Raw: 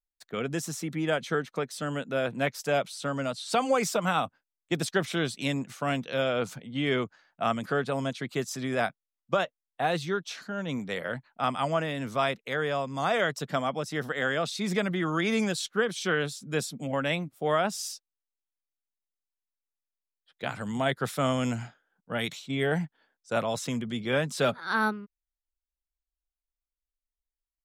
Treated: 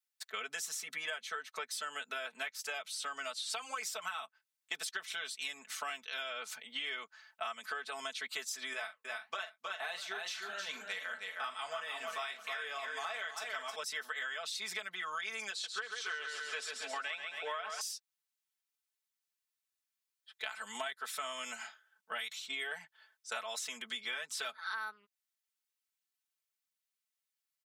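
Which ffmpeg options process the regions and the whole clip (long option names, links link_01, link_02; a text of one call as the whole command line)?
ffmpeg -i in.wav -filter_complex "[0:a]asettb=1/sr,asplit=3[link_01][link_02][link_03];[link_01]atrim=end=8.734[link_04];[link_02]atrim=start=8.73:end=13.76,asetpts=PTS-STARTPTS,afade=type=in:duration=0.004:curve=qsin,afade=type=out:start_time=5.026:duration=0.004:curve=qsin,aecho=1:1:314|628|942:0.473|0.123|0.032,atrim=end_sample=221823,flanger=delay=5.6:depth=7.9:regen=-63:speed=1.3:shape=sinusoidal,asplit=2[link_05][link_06];[link_06]adelay=42,volume=-12.5dB[link_07];[link_05][link_07]amix=inputs=2:normalize=0,atrim=end_sample=221823[link_08];[link_03]atrim=start=13.756[link_09];[link_04][link_08]acrossfade=duration=0.004:curve1=hsin:curve2=qsin[link_10];[link_10][link_09]acrossfade=duration=0.004:curve1=qsin:curve2=hsin,asettb=1/sr,asplit=3[link_11][link_12][link_13];[link_11]atrim=end=15.504[link_14];[link_12]atrim=start=15.5:end=17.81,asetpts=PTS-STARTPTS,afade=type=in:duration=0.004:curve=qsin,afade=type=out:start_time=2.306:duration=0.004:curve=qsin,highpass=260,lowpass=8000,highshelf=frequency=5500:gain=-7.5,aecho=1:1:136|272|408|544|680|816|952:0.447|0.246|0.135|0.0743|0.0409|0.0225|0.0124,atrim=end_sample=101871[link_15];[link_13]atrim=start=17.806[link_16];[link_14][link_15]acrossfade=duration=0.004:curve1=hsin:curve2=qsin[link_17];[link_17][link_16]acrossfade=duration=0.004:curve1=qsin:curve2=hsin,highpass=1300,aecho=1:1:4.6:0.97,acompressor=threshold=-40dB:ratio=12,volume=3.5dB" out.wav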